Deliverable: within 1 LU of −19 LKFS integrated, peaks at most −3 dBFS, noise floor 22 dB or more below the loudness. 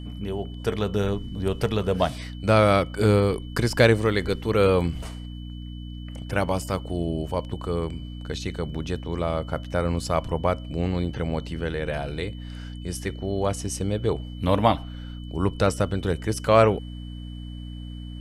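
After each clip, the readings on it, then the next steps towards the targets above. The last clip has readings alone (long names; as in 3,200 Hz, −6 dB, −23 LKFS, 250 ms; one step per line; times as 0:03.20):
mains hum 60 Hz; hum harmonics up to 300 Hz; level of the hum −34 dBFS; interfering tone 3,000 Hz; level of the tone −49 dBFS; integrated loudness −25.0 LKFS; sample peak −4.5 dBFS; target loudness −19.0 LKFS
→ hum removal 60 Hz, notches 5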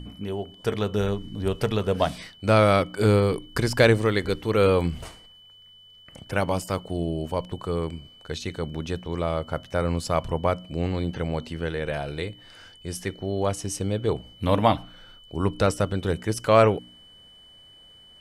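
mains hum none found; interfering tone 3,000 Hz; level of the tone −49 dBFS
→ notch filter 3,000 Hz, Q 30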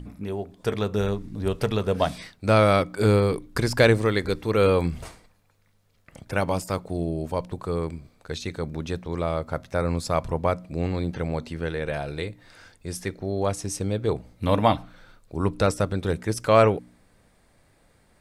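interfering tone none found; integrated loudness −25.0 LKFS; sample peak −4.5 dBFS; target loudness −19.0 LKFS
→ level +6 dB
brickwall limiter −3 dBFS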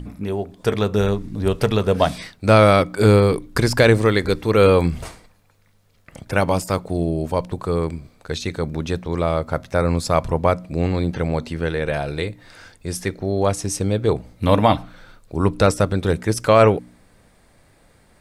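integrated loudness −19.5 LKFS; sample peak −3.0 dBFS; background noise floor −56 dBFS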